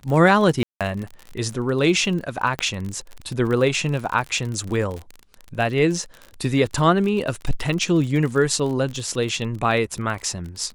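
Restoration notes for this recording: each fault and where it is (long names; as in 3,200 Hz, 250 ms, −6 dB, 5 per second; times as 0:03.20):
surface crackle 41 per second −27 dBFS
0:00.63–0:00.81: drop-out 177 ms
0:02.59: click −10 dBFS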